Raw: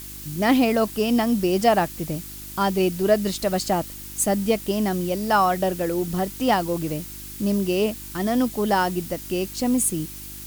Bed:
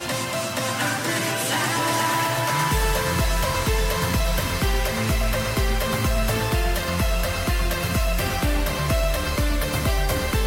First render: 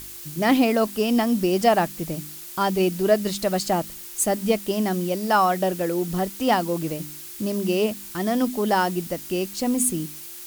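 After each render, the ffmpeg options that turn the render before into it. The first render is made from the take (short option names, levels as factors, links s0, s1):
-af "bandreject=f=50:t=h:w=4,bandreject=f=100:t=h:w=4,bandreject=f=150:t=h:w=4,bandreject=f=200:t=h:w=4,bandreject=f=250:t=h:w=4,bandreject=f=300:t=h:w=4"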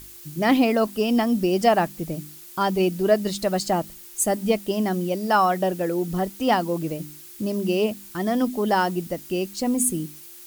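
-af "afftdn=nr=6:nf=-39"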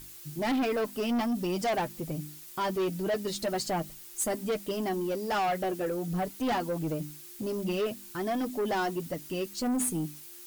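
-af "flanger=delay=6.3:depth=2.2:regen=25:speed=1.3:shape=triangular,asoftclip=type=tanh:threshold=0.0562"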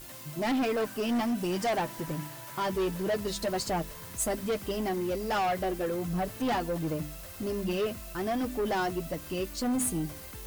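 -filter_complex "[1:a]volume=0.0668[s0];[0:a][s0]amix=inputs=2:normalize=0"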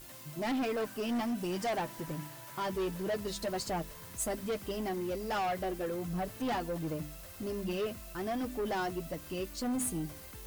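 -af "volume=0.596"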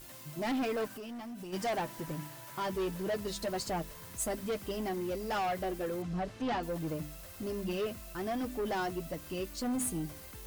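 -filter_complex "[0:a]asplit=3[s0][s1][s2];[s0]afade=t=out:st=0.87:d=0.02[s3];[s1]acompressor=threshold=0.00891:ratio=10:attack=3.2:release=140:knee=1:detection=peak,afade=t=in:st=0.87:d=0.02,afade=t=out:st=1.52:d=0.02[s4];[s2]afade=t=in:st=1.52:d=0.02[s5];[s3][s4][s5]amix=inputs=3:normalize=0,asettb=1/sr,asplit=3[s6][s7][s8];[s6]atrim=end=6.024[s9];[s7]atrim=start=6.02:end=6.63,asetpts=PTS-STARTPTS,afade=t=in:d=0.004:c=qsin,afade=t=out:st=0.606:d=0.004:c=qsin,lowpass=5400[s10];[s8]atrim=start=6.626[s11];[s9][s10]acrossfade=d=0.004:c1=hsin:c2=qsin[s12];[s12][s11]acrossfade=d=0.004:c1=qsin:c2=hsin"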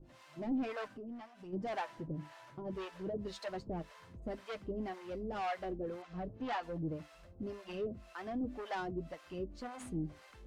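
-filter_complex "[0:a]adynamicsmooth=sensitivity=2.5:basefreq=3700,acrossover=split=570[s0][s1];[s0]aeval=exprs='val(0)*(1-1/2+1/2*cos(2*PI*1.9*n/s))':c=same[s2];[s1]aeval=exprs='val(0)*(1-1/2-1/2*cos(2*PI*1.9*n/s))':c=same[s3];[s2][s3]amix=inputs=2:normalize=0"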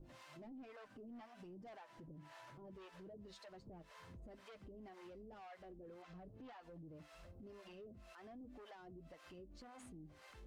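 -af "acompressor=threshold=0.00398:ratio=5,alimiter=level_in=17.8:limit=0.0631:level=0:latency=1:release=83,volume=0.0562"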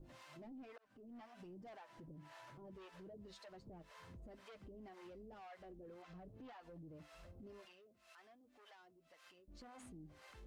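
-filter_complex "[0:a]asettb=1/sr,asplit=3[s0][s1][s2];[s0]atrim=end=7.654[s3];[s1]atrim=start=7.65:end=9.48,asetpts=PTS-STARTPTS,afade=t=in:d=0.004:c=qsin,afade=t=out:st=1.826:d=0.004:c=qsin,highpass=f=1500:p=1[s4];[s2]atrim=start=9.476[s5];[s3][s4]acrossfade=d=0.004:c1=hsin:c2=qsin[s6];[s6][s5]acrossfade=d=0.004:c1=qsin:c2=hsin,asplit=2[s7][s8];[s7]atrim=end=0.78,asetpts=PTS-STARTPTS,afade=t=out:st=0.776:d=0.004:c=hsin[s9];[s8]atrim=start=0.78,asetpts=PTS-STARTPTS,afade=t=in:d=0.59:c=qsin[s10];[s9][s10]concat=n=2:v=0:a=1"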